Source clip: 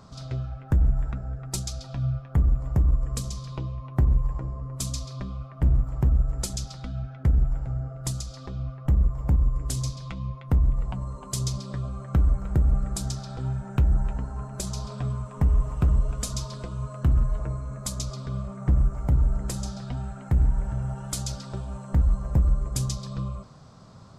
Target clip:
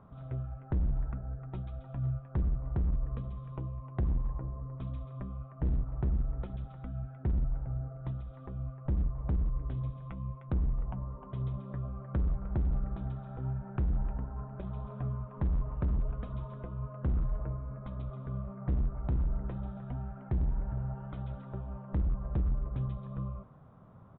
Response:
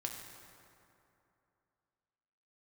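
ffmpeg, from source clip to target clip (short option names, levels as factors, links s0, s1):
-af "lowpass=1500,aresample=8000,volume=10,asoftclip=hard,volume=0.1,aresample=44100,volume=0.501"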